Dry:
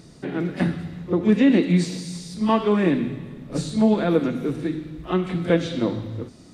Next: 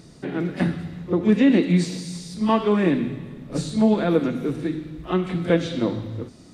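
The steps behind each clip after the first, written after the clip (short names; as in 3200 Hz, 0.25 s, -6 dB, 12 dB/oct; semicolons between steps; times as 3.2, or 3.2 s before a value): nothing audible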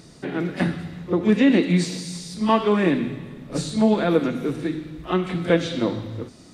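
low shelf 450 Hz -4.5 dB; gain +3 dB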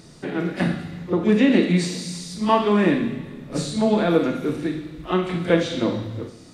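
Schroeder reverb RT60 0.45 s, combs from 27 ms, DRR 6 dB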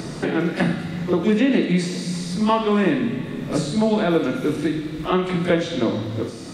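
three-band squash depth 70%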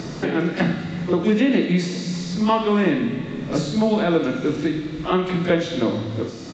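downsampling 16000 Hz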